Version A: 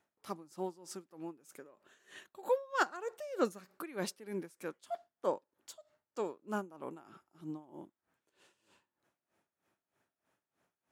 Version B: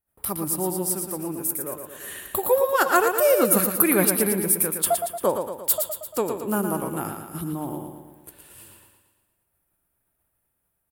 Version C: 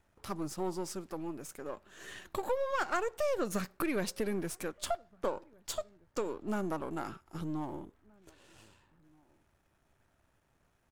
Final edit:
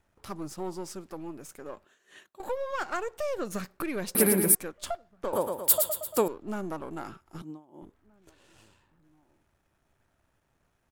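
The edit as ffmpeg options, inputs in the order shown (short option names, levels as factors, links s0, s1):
-filter_complex "[0:a]asplit=2[s0][s1];[1:a]asplit=2[s2][s3];[2:a]asplit=5[s4][s5][s6][s7][s8];[s4]atrim=end=1.852[s9];[s0]atrim=start=1.848:end=2.402[s10];[s5]atrim=start=2.398:end=4.152[s11];[s2]atrim=start=4.148:end=4.552[s12];[s6]atrim=start=4.548:end=5.332[s13];[s3]atrim=start=5.328:end=6.282[s14];[s7]atrim=start=6.278:end=7.422[s15];[s1]atrim=start=7.418:end=7.822[s16];[s8]atrim=start=7.818[s17];[s9][s10]acrossfade=d=0.004:c1=hsin:c2=hsin[s18];[s18][s11]acrossfade=d=0.004:c1=hsin:c2=hsin[s19];[s19][s12]acrossfade=d=0.004:c1=hsin:c2=hsin[s20];[s20][s13]acrossfade=d=0.004:c1=hsin:c2=hsin[s21];[s21][s14]acrossfade=d=0.004:c1=hsin:c2=hsin[s22];[s22][s15]acrossfade=d=0.004:c1=hsin:c2=hsin[s23];[s23][s16]acrossfade=d=0.004:c1=hsin:c2=hsin[s24];[s24][s17]acrossfade=d=0.004:c1=hsin:c2=hsin"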